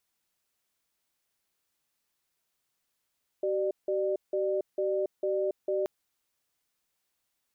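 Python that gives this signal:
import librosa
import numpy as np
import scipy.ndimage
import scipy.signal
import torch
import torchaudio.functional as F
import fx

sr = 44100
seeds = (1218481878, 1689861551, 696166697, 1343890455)

y = fx.cadence(sr, length_s=2.43, low_hz=382.0, high_hz=598.0, on_s=0.28, off_s=0.17, level_db=-28.5)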